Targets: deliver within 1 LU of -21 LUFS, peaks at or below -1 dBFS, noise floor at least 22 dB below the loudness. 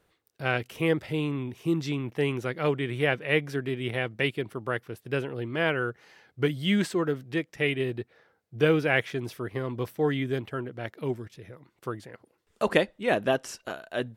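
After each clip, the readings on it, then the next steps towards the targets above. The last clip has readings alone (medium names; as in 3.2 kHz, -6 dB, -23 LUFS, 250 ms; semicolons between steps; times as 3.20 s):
loudness -29.0 LUFS; peak level -6.5 dBFS; loudness target -21.0 LUFS
-> trim +8 dB; peak limiter -1 dBFS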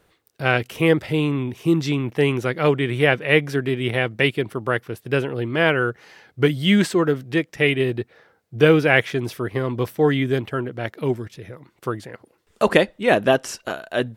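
loudness -21.0 LUFS; peak level -1.0 dBFS; noise floor -64 dBFS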